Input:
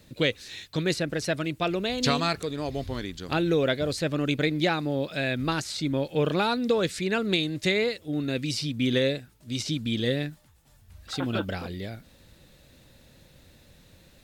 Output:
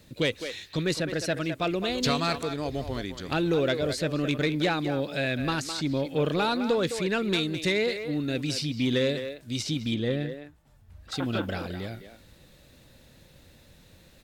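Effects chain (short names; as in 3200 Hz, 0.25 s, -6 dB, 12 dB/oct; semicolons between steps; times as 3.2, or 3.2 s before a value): 9.94–11.12 high shelf 2400 Hz -10.5 dB; speakerphone echo 0.21 s, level -9 dB; soft clip -15.5 dBFS, distortion -20 dB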